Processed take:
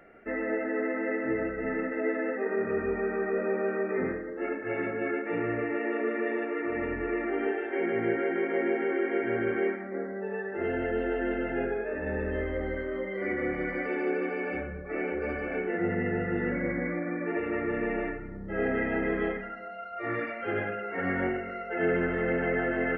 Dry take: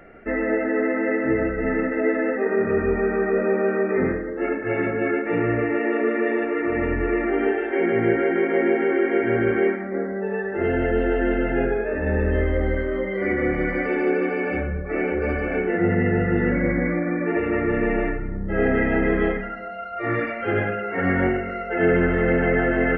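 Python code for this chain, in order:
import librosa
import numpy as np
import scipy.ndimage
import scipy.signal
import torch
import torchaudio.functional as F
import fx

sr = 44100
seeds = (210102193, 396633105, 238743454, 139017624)

y = fx.low_shelf(x, sr, hz=130.0, db=-9.5)
y = y * librosa.db_to_amplitude(-7.0)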